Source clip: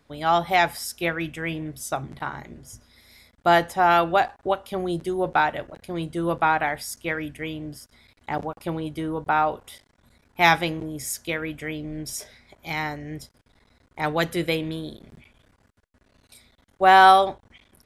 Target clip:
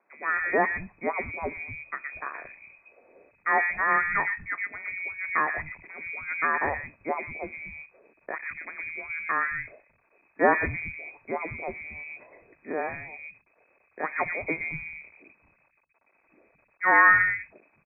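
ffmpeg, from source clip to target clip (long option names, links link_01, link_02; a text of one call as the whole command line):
ffmpeg -i in.wav -filter_complex "[0:a]lowpass=frequency=2200:width_type=q:width=0.5098,lowpass=frequency=2200:width_type=q:width=0.6013,lowpass=frequency=2200:width_type=q:width=0.9,lowpass=frequency=2200:width_type=q:width=2.563,afreqshift=-2600,tiltshelf=frequency=970:gain=7.5,acrossover=split=180|1900[link_01][link_02][link_03];[link_03]adelay=120[link_04];[link_01]adelay=220[link_05];[link_05][link_02][link_04]amix=inputs=3:normalize=0" out.wav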